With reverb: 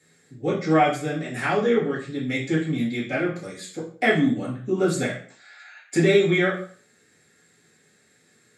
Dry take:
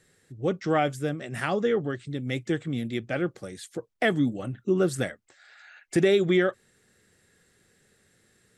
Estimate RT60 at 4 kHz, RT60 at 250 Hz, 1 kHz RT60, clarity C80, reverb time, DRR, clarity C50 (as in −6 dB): 0.40 s, 0.50 s, 0.45 s, 11.0 dB, 0.45 s, −8.0 dB, 6.5 dB